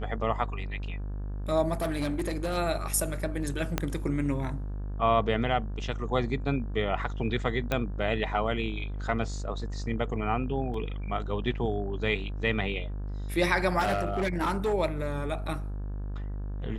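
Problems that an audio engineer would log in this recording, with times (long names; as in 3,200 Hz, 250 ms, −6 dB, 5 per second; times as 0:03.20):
mains buzz 50 Hz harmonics 35 −34 dBFS
0:01.80–0:02.58: clipping −25 dBFS
0:03.78: click −11 dBFS
0:07.72: click −14 dBFS
0:10.74: drop-out 2.8 ms
0:13.79–0:14.74: clipping −23 dBFS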